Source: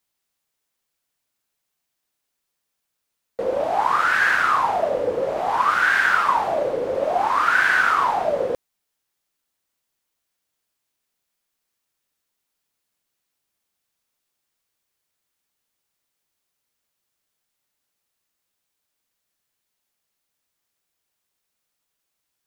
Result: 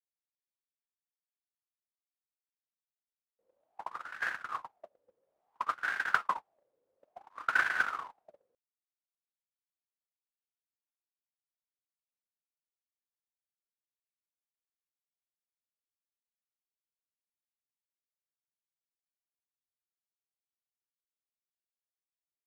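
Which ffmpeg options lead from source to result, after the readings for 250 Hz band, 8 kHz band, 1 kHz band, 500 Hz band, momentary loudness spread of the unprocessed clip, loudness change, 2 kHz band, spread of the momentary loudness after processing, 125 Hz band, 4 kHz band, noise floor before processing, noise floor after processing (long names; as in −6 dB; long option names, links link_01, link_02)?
−24.0 dB, −16.5 dB, −18.0 dB, −31.5 dB, 8 LU, −14.0 dB, −14.0 dB, 17 LU, below −20 dB, −16.0 dB, −79 dBFS, below −85 dBFS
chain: -af "agate=range=-59dB:threshold=-14dB:ratio=16:detection=peak,volume=3dB"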